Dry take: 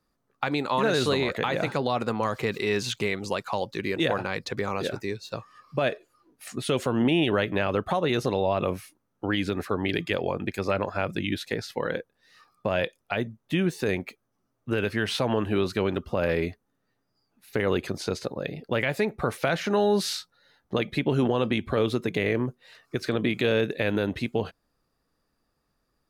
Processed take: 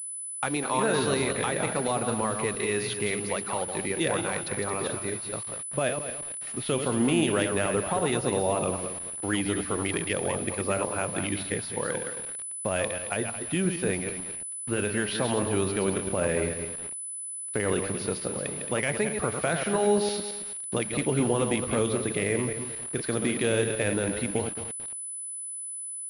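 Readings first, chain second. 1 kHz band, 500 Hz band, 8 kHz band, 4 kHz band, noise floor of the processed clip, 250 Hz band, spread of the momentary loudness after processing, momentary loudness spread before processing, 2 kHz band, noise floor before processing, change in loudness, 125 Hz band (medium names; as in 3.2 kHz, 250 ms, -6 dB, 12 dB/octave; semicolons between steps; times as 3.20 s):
-1.0 dB, -1.0 dB, +15.0 dB, -3.0 dB, -37 dBFS, -1.5 dB, 8 LU, 9 LU, -1.5 dB, -76 dBFS, -1.0 dB, -1.5 dB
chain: backward echo that repeats 111 ms, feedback 52%, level -6 dB; bit crusher 7-bit; class-D stage that switches slowly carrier 10 kHz; trim -2.5 dB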